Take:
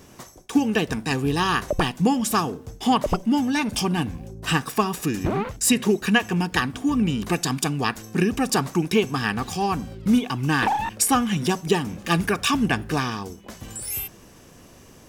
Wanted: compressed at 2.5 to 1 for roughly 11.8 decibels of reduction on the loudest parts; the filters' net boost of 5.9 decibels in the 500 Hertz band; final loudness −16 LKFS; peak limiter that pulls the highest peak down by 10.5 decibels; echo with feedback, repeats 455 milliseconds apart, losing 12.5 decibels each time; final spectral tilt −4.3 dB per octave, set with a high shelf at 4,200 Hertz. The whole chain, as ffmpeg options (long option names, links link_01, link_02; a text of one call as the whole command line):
ffmpeg -i in.wav -af "equalizer=frequency=500:width_type=o:gain=7.5,highshelf=frequency=4200:gain=7.5,acompressor=threshold=-28dB:ratio=2.5,alimiter=limit=-21dB:level=0:latency=1,aecho=1:1:455|910|1365:0.237|0.0569|0.0137,volume=15dB" out.wav